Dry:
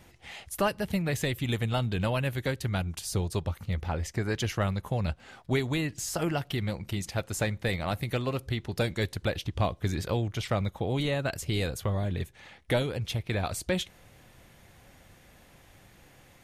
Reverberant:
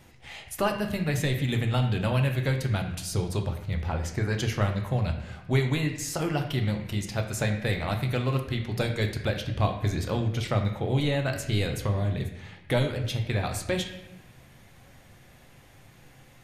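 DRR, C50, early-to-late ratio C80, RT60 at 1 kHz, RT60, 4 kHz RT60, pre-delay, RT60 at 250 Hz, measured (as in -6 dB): 3.5 dB, 7.5 dB, 10.0 dB, 0.90 s, 0.90 s, 0.75 s, 7 ms, 1.2 s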